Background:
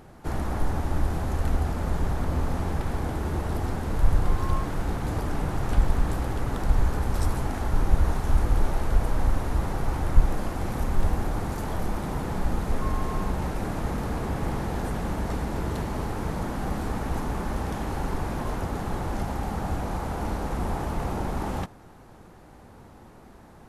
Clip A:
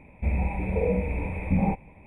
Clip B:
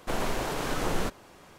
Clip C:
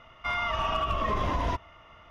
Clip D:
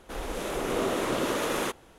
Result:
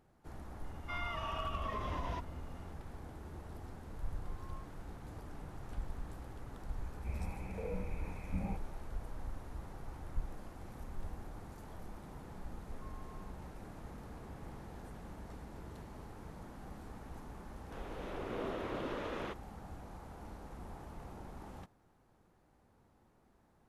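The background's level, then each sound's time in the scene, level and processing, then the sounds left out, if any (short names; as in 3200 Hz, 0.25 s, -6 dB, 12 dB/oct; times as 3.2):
background -20 dB
0.64 add C -11.5 dB
6.82 add A -16.5 dB
17.62 add D -11 dB + air absorption 230 m
not used: B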